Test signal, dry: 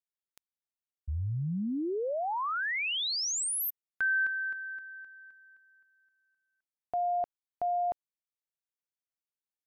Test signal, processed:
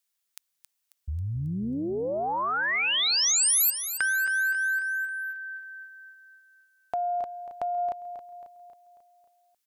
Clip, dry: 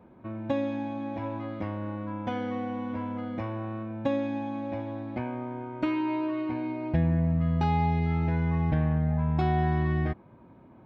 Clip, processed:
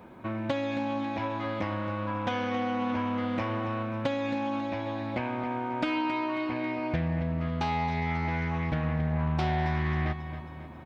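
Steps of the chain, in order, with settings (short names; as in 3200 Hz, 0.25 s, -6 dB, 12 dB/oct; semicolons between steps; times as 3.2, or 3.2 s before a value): tilt shelf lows -4.5 dB, about 840 Hz; compressor 3:1, threshold -36 dBFS; high shelf 3800 Hz +5.5 dB; feedback echo 0.271 s, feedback 53%, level -11 dB; Doppler distortion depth 0.22 ms; gain +7.5 dB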